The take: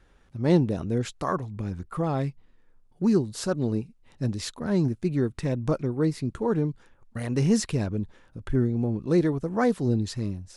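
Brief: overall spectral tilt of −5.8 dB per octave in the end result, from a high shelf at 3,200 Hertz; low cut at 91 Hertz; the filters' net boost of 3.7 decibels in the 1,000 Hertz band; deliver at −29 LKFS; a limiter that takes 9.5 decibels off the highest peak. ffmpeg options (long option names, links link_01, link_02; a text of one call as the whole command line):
ffmpeg -i in.wav -af "highpass=91,equalizer=frequency=1000:width_type=o:gain=4,highshelf=frequency=3200:gain=7,volume=0.5dB,alimiter=limit=-18dB:level=0:latency=1" out.wav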